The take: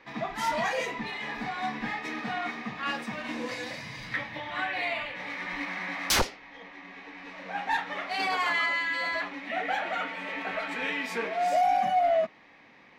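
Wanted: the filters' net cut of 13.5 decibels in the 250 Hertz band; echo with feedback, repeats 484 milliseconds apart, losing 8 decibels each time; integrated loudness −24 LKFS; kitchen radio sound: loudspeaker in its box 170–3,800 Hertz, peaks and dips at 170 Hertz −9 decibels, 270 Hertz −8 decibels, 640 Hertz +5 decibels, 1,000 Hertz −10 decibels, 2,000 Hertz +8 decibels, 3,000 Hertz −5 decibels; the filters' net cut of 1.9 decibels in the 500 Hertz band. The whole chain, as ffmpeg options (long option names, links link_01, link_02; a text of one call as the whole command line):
ffmpeg -i in.wav -af "highpass=170,equalizer=frequency=170:width_type=q:width=4:gain=-9,equalizer=frequency=270:width_type=q:width=4:gain=-8,equalizer=frequency=640:width_type=q:width=4:gain=5,equalizer=frequency=1000:width_type=q:width=4:gain=-10,equalizer=frequency=2000:width_type=q:width=4:gain=8,equalizer=frequency=3000:width_type=q:width=4:gain=-5,lowpass=frequency=3800:width=0.5412,lowpass=frequency=3800:width=1.3066,equalizer=frequency=250:width_type=o:gain=-7.5,equalizer=frequency=500:width_type=o:gain=-6,aecho=1:1:484|968|1452|1936|2420:0.398|0.159|0.0637|0.0255|0.0102,volume=4dB" out.wav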